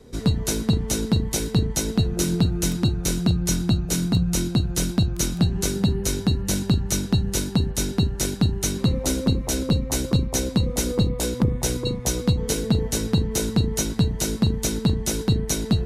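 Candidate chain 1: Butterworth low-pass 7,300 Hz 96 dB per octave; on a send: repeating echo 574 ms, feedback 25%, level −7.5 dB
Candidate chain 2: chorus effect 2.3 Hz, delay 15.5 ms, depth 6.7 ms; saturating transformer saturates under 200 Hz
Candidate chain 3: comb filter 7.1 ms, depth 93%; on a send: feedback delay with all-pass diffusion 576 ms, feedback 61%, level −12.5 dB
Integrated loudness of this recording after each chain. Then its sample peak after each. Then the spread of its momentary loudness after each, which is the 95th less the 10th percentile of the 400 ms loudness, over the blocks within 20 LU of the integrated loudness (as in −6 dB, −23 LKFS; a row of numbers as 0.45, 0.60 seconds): −22.5, −27.5, −21.0 LKFS; −9.0, −11.5, −5.5 dBFS; 2, 2, 2 LU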